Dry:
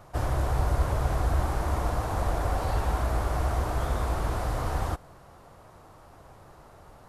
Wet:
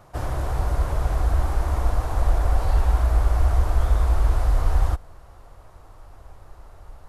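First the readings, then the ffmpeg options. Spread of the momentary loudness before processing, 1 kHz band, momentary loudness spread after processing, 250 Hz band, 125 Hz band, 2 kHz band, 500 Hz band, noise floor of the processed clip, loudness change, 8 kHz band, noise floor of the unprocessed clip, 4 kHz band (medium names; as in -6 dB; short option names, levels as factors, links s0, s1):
3 LU, 0.0 dB, 5 LU, -1.5 dB, +5.5 dB, 0.0 dB, -0.5 dB, -48 dBFS, +5.0 dB, 0.0 dB, -52 dBFS, 0.0 dB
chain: -af "asubboost=boost=8:cutoff=58"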